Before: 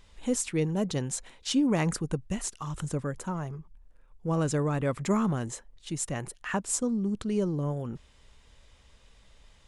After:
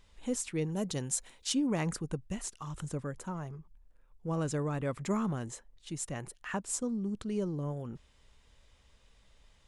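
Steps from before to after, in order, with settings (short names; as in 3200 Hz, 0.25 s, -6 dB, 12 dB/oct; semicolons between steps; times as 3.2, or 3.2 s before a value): 0.71–1.54 high shelf 6900 Hz +12 dB; gain -5.5 dB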